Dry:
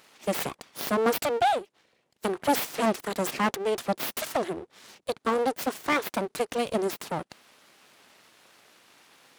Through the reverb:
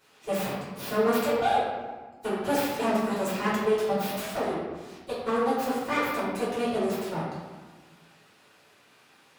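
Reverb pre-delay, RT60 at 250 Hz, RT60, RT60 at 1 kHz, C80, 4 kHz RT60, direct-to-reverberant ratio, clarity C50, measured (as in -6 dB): 3 ms, 1.8 s, 1.3 s, 1.3 s, 2.5 dB, 0.80 s, -11.0 dB, 0.0 dB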